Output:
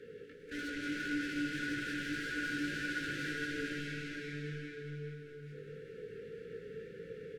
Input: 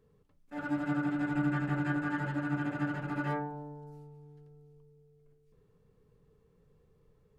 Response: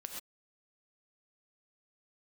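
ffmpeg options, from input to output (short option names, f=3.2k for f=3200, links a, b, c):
-filter_complex "[0:a]bass=f=250:g=-7,treble=f=4k:g=-10,acompressor=threshold=-41dB:ratio=6,asplit=2[a][b];[b]adelay=455,lowpass=f=1.6k:p=1,volume=-5dB,asplit=2[c][d];[d]adelay=455,lowpass=f=1.6k:p=1,volume=0.3,asplit=2[e][f];[f]adelay=455,lowpass=f=1.6k:p=1,volume=0.3,asplit=2[g][h];[h]adelay=455,lowpass=f=1.6k:p=1,volume=0.3[i];[c][e][g][i]amix=inputs=4:normalize=0[j];[a][j]amix=inputs=2:normalize=0,asplit=2[k][l];[l]highpass=f=720:p=1,volume=33dB,asoftclip=type=tanh:threshold=-33dB[m];[k][m]amix=inputs=2:normalize=0,lowpass=f=3.2k:p=1,volume=-6dB,aecho=1:1:402|804|1206|1608|2010:0.501|0.205|0.0842|0.0345|0.0142,flanger=delay=17:depth=3.1:speed=1.7,asuperstop=centerf=860:order=20:qfactor=0.99,asplit=2[n][o];[1:a]atrim=start_sample=2205,asetrate=25137,aresample=44100[p];[o][p]afir=irnorm=-1:irlink=0,volume=3dB[q];[n][q]amix=inputs=2:normalize=0,volume=-3dB"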